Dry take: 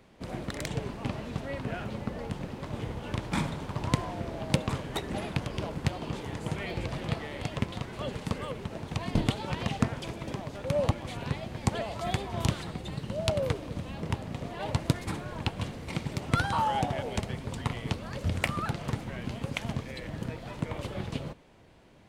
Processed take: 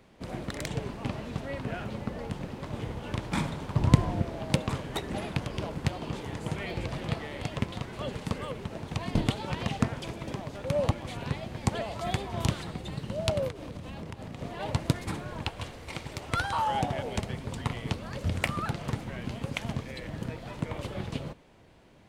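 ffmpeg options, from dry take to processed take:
-filter_complex "[0:a]asettb=1/sr,asplit=3[a][b][c];[a]atrim=end=3.754[d];[b]atrim=start=3.75:end=4.23,asetpts=PTS-STARTPTS,afade=t=in:d=0.004:c=qsin,afade=t=out:st=0.476:d=0.004:c=qsin,lowshelf=f=300:g=10.5[e];[c]atrim=start=4.226[f];[d][e]acrossfade=d=0.004:c1=hsin:c2=qsin[g];[g][f]acrossfade=d=0.004:c1=qsin:c2=hsin,asettb=1/sr,asplit=3[h][i][j];[h]atrim=end=13.484[k];[i]atrim=start=13.48:end=14.41,asetpts=PTS-STARTPTS,afade=t=in:d=0.004:c=qsin,afade=t=out:st=0.926:d=0.004:c=qsin,acompressor=threshold=-35dB:ratio=10:attack=3.2:release=140:knee=1:detection=peak[l];[j]atrim=start=14.406[m];[k][l]acrossfade=d=0.004:c1=hsin:c2=qsin[n];[n][m]acrossfade=d=0.004:c1=qsin:c2=hsin,asettb=1/sr,asplit=3[o][p][q];[o]atrim=end=15.444[r];[p]atrim=start=15.44:end=16.68,asetpts=PTS-STARTPTS,afade=t=in:d=0.004:c=qsin,afade=t=out:st=1.236:d=0.004:c=qsin,equalizer=f=180:t=o:w=1.6:g=-10[s];[q]atrim=start=16.676[t];[r][s]acrossfade=d=0.004:c1=hsin:c2=qsin[u];[u][t]acrossfade=d=0.004:c1=qsin:c2=hsin"

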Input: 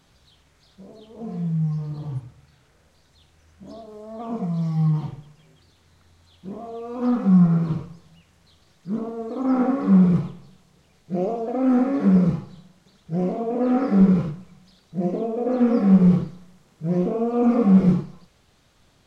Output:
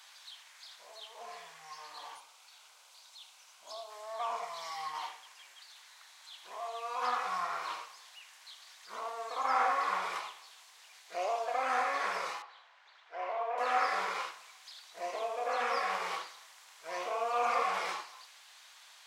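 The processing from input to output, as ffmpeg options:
-filter_complex "[0:a]asettb=1/sr,asplit=3[a][b][c];[a]atrim=end=2.164[d];[b]atrim=start=2.16:end=3.9,asetpts=PTS-STARTPTS,afade=t=in:d=0.004:c=qsin,afade=t=out:st=1.736:d=0.004:c=qsin,equalizer=f=1.8k:t=o:w=0.4:g=-13[e];[c]atrim=start=3.896[f];[d][e]acrossfade=d=0.004:c1=hsin:c2=qsin[g];[g][f]acrossfade=d=0.004:c1=qsin:c2=hsin,asettb=1/sr,asplit=3[h][i][j];[h]atrim=end=12.424[k];[i]atrim=start=12.42:end=13.58,asetpts=PTS-STARTPTS,afade=t=in:d=0.004:c=qsin,afade=t=out:st=1.156:d=0.004:c=qsin,highpass=400,lowpass=2.2k[l];[j]atrim=start=13.576[m];[k][l]acrossfade=d=0.004:c1=hsin:c2=qsin[n];[n][m]acrossfade=d=0.004:c1=qsin:c2=hsin,highpass=f=940:w=0.5412,highpass=f=940:w=1.3066,equalizer=f=1.3k:w=4.6:g=-5,volume=8.5dB"

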